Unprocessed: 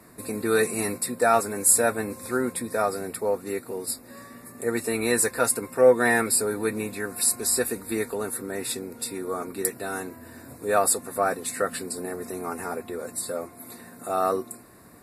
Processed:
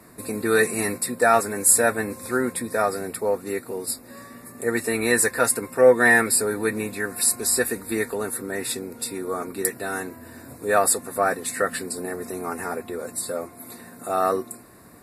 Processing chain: dynamic EQ 1800 Hz, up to +6 dB, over -46 dBFS, Q 4; gain +2 dB

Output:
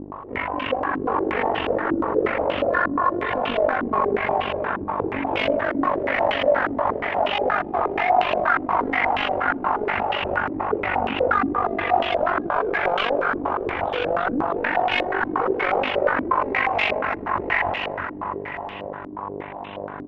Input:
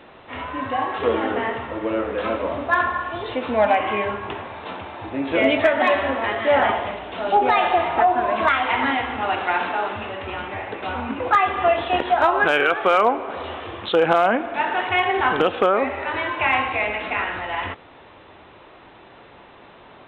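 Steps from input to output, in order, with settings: buzz 50 Hz, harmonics 22, -42 dBFS 0 dB/oct; in parallel at +0.5 dB: compressor, threshold -28 dBFS, peak gain reduction 15 dB; on the sum: hard clip -20.5 dBFS, distortion -6 dB; AM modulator 48 Hz, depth 65%; on a send: bouncing-ball echo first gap 0.33 s, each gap 0.9×, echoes 5; on the sum: stepped low-pass 8.4 Hz 300–2900 Hz; gain -1.5 dB

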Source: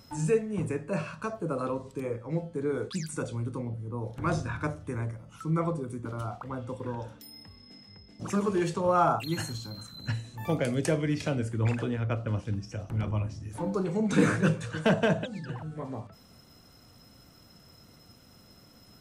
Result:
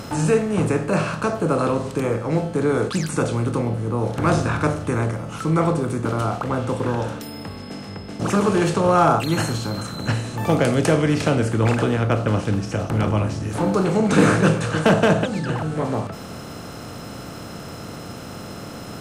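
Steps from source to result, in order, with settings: per-bin compression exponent 0.6; gain +5.5 dB

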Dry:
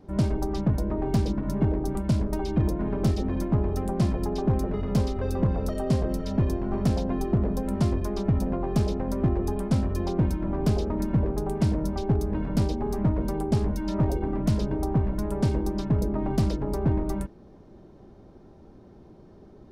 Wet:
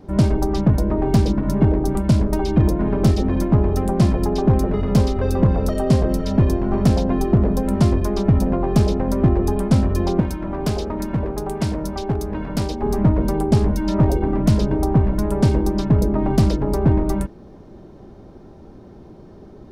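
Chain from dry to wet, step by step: 10.2–12.83 low shelf 460 Hz -8 dB; gain +8 dB

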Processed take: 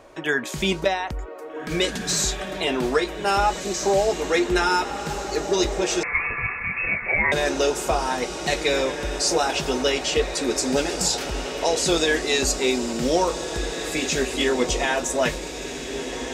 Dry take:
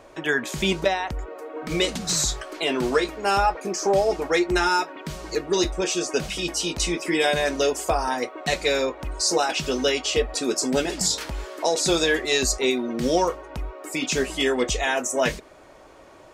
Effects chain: diffused feedback echo 1.706 s, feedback 57%, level -8.5 dB; 6.03–7.32 inverted band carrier 2600 Hz

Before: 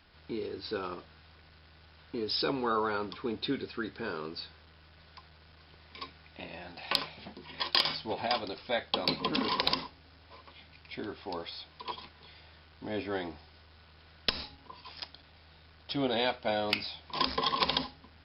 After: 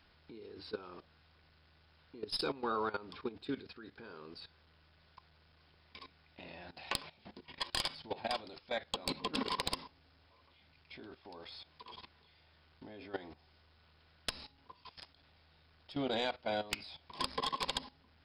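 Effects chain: tracing distortion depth 0.062 ms; level quantiser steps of 16 dB; gain -2.5 dB

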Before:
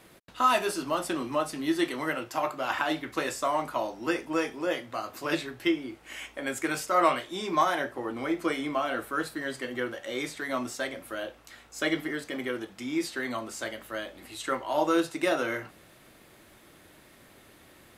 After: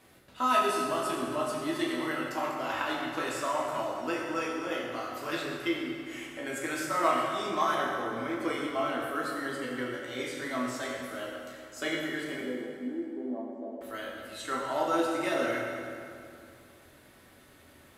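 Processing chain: 12.41–13.81 elliptic band-pass 210–820 Hz, stop band 40 dB; reverb RT60 2.5 s, pre-delay 6 ms, DRR -3 dB; gain -6.5 dB

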